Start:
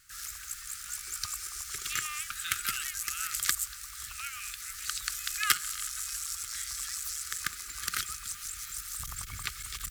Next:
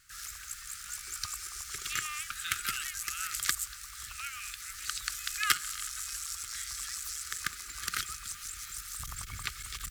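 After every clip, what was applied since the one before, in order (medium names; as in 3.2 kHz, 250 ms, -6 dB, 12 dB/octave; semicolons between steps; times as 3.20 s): treble shelf 8.5 kHz -5 dB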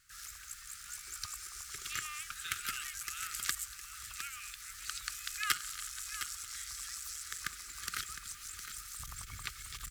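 delay 710 ms -10 dB; trim -5 dB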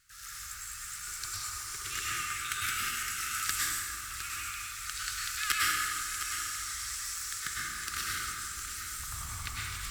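plate-style reverb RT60 2.1 s, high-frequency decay 0.55×, pre-delay 90 ms, DRR -6.5 dB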